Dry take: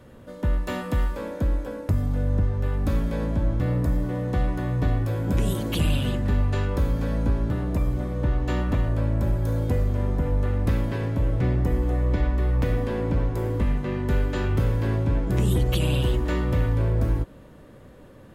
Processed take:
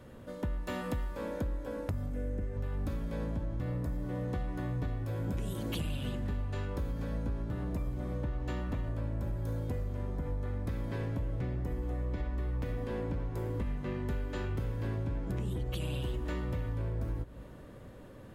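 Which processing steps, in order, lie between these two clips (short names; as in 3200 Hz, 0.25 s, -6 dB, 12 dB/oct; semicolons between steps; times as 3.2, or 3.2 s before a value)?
2.1–2.57 graphic EQ 125/250/500/1000/2000/4000/8000 Hz -9/+4/+5/-11/+6/-8/+4 dB; compressor 6:1, threshold -29 dBFS, peak gain reduction 11.5 dB; 10.15–11.01 notch 2800 Hz, Q 11; 15.32–15.74 high shelf 5200 Hz -8 dB; on a send: reverb RT60 5.2 s, pre-delay 0.123 s, DRR 18 dB; on the sum: gain -3 dB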